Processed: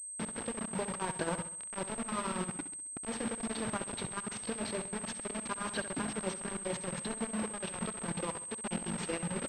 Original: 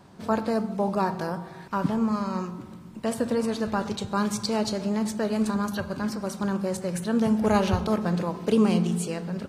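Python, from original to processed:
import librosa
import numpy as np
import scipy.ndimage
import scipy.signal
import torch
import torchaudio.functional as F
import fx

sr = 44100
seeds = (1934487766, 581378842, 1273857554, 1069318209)

y = fx.dereverb_blind(x, sr, rt60_s=0.84)
y = y * (1.0 - 0.8 / 2.0 + 0.8 / 2.0 * np.cos(2.0 * np.pi * 9.2 * (np.arange(len(y)) / sr)))
y = scipy.signal.sosfilt(scipy.signal.butter(4, 120.0, 'highpass', fs=sr, output='sos'), y)
y = fx.peak_eq(y, sr, hz=760.0, db=-4.5, octaves=0.35)
y = fx.over_compress(y, sr, threshold_db=-35.0, ratio=-0.5)
y = fx.hum_notches(y, sr, base_hz=50, count=5)
y = fx.quant_dither(y, sr, seeds[0], bits=6, dither='none')
y = y + 10.0 ** (-46.0 / 20.0) * np.sin(2.0 * np.pi * 890.0 * np.arange(len(y)) / sr)
y = np.sign(y) * np.maximum(np.abs(y) - 10.0 ** (-44.0 / 20.0), 0.0)
y = fx.echo_feedback(y, sr, ms=66, feedback_pct=48, wet_db=-12.0)
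y = fx.pwm(y, sr, carrier_hz=8300.0)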